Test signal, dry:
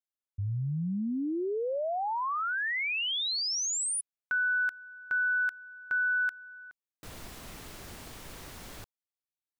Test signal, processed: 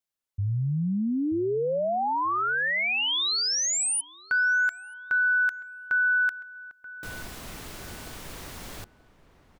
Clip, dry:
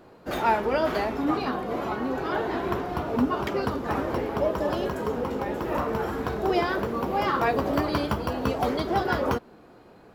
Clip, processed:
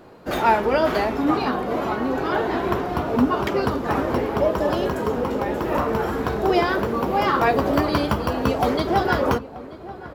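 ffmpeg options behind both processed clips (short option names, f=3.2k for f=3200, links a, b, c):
-filter_complex "[0:a]asplit=2[a][b];[b]adelay=932,lowpass=f=1.5k:p=1,volume=-16dB,asplit=2[c][d];[d]adelay=932,lowpass=f=1.5k:p=1,volume=0.27,asplit=2[e][f];[f]adelay=932,lowpass=f=1.5k:p=1,volume=0.27[g];[a][c][e][g]amix=inputs=4:normalize=0,volume=5dB"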